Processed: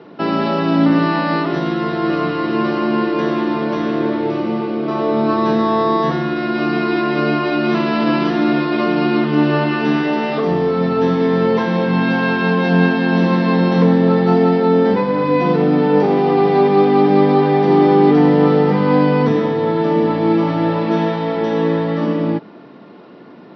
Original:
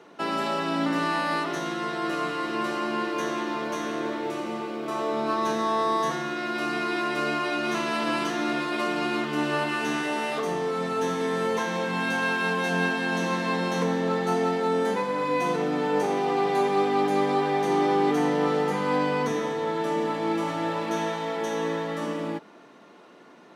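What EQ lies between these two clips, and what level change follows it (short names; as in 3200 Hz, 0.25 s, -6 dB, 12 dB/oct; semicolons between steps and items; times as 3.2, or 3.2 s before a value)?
steep low-pass 5400 Hz 96 dB/oct; low shelf 110 Hz +7.5 dB; low shelf 490 Hz +11 dB; +4.5 dB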